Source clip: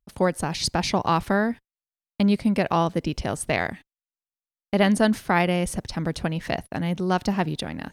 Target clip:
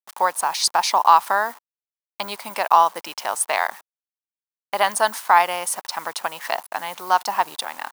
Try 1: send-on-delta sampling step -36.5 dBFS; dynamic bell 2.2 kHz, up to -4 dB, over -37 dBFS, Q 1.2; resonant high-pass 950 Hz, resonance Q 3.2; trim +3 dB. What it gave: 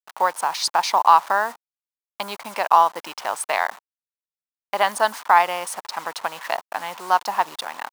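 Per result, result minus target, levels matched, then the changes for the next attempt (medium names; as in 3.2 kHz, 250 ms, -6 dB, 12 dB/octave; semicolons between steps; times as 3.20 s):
send-on-delta sampling: distortion +8 dB; 8 kHz band -5.0 dB
change: send-on-delta sampling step -43.5 dBFS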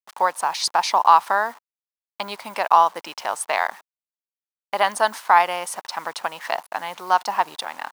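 8 kHz band -5.0 dB
add after resonant high-pass: treble shelf 8.1 kHz +11.5 dB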